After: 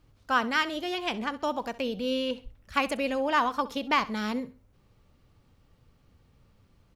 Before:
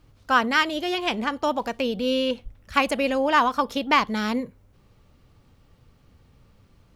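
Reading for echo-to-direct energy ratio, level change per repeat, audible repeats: −17.5 dB, −10.5 dB, 2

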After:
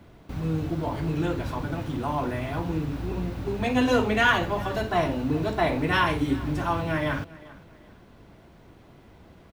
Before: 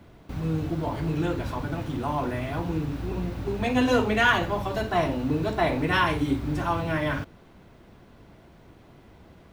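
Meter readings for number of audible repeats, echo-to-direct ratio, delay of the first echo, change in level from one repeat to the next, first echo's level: 2, −20.0 dB, 396 ms, −10.0 dB, −20.5 dB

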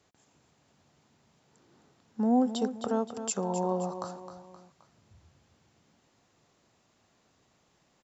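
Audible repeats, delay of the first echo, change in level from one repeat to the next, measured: 3, 262 ms, −6.5 dB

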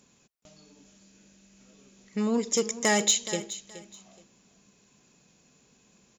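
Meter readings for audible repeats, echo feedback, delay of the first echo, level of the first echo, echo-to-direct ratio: 2, 23%, 423 ms, −15.0 dB, −15.0 dB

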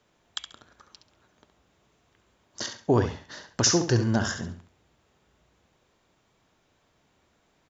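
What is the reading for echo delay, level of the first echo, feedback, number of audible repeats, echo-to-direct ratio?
68 ms, −9.0 dB, 27%, 3, −8.5 dB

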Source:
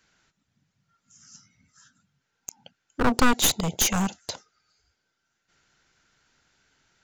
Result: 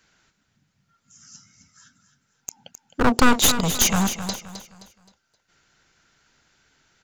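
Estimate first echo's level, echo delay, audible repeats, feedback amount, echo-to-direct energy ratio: −10.5 dB, 262 ms, 3, 35%, −10.0 dB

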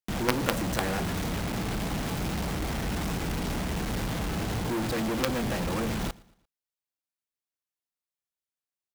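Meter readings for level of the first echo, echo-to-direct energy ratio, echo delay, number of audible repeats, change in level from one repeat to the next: −23.5 dB, −22.5 dB, 115 ms, 2, −7.5 dB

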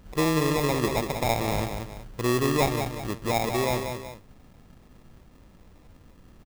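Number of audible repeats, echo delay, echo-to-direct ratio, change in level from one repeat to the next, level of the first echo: 2, 188 ms, −6.0 dB, −7.5 dB, −6.5 dB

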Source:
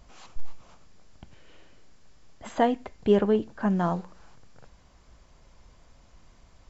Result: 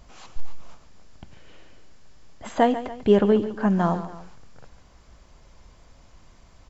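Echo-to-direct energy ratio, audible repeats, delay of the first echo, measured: −12.0 dB, 2, 142 ms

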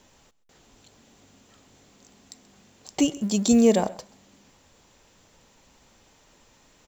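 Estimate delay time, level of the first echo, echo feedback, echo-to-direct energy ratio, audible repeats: 131 ms, −20.5 dB, repeats not evenly spaced, −20.5 dB, 1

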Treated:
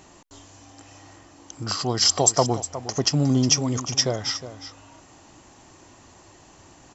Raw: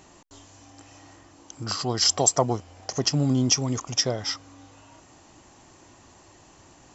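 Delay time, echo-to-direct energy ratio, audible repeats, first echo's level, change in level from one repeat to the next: 362 ms, −13.0 dB, 1, −13.0 dB, repeats not evenly spaced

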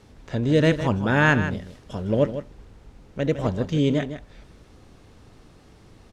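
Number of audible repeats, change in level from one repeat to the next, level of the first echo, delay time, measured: 1, repeats not evenly spaced, −11.0 dB, 157 ms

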